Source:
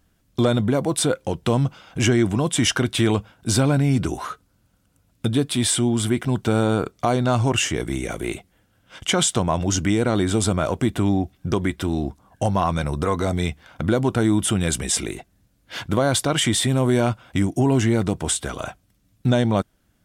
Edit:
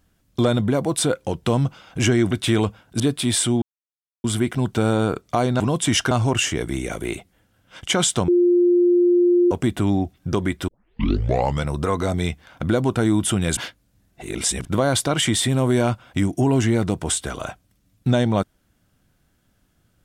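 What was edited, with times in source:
0:02.31–0:02.82: move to 0:07.30
0:03.51–0:05.32: remove
0:05.94: splice in silence 0.62 s
0:09.47–0:10.70: beep over 352 Hz −12.5 dBFS
0:11.87: tape start 0.99 s
0:14.76–0:15.84: reverse

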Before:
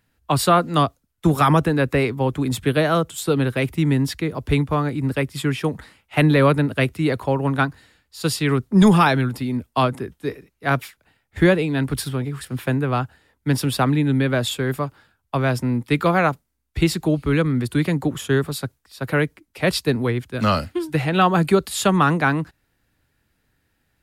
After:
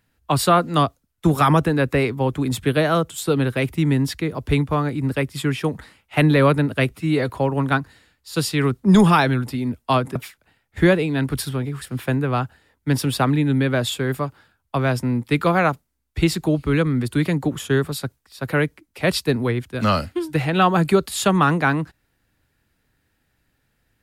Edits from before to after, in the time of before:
0:06.91–0:07.16: time-stretch 1.5×
0:10.03–0:10.75: remove

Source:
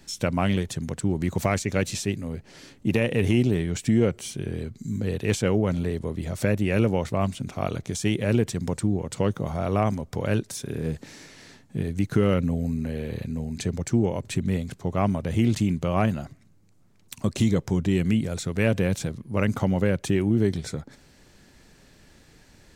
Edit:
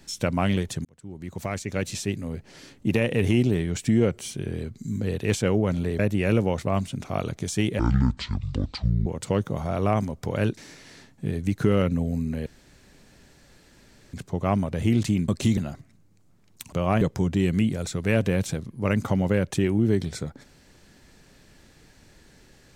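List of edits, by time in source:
0:00.85–0:02.23: fade in
0:05.99–0:06.46: remove
0:08.26–0:08.96: play speed 55%
0:10.47–0:11.09: remove
0:12.98–0:14.65: fill with room tone
0:15.80–0:16.09: swap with 0:17.24–0:17.53

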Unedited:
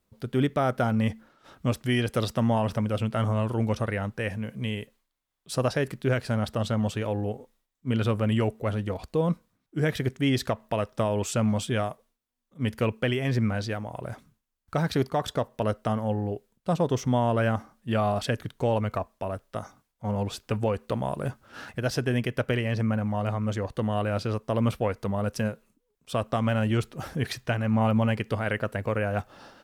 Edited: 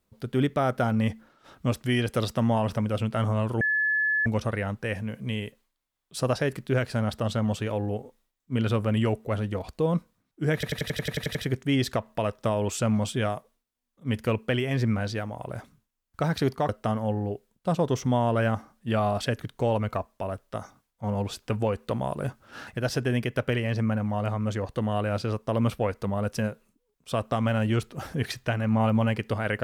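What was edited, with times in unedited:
0:03.61: insert tone 1,720 Hz −21.5 dBFS 0.65 s
0:09.89: stutter 0.09 s, 10 plays
0:15.23–0:15.70: remove

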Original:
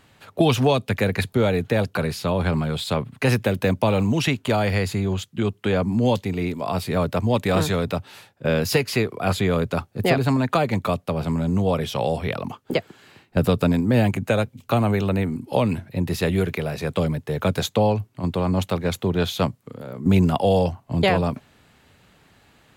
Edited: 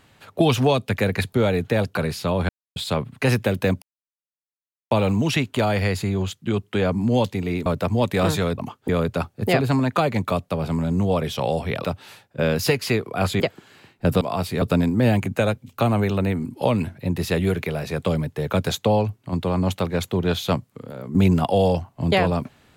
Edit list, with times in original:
0:02.49–0:02.76: silence
0:03.82: splice in silence 1.09 s
0:06.57–0:06.98: move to 0:13.53
0:07.90–0:09.46: swap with 0:12.41–0:12.72

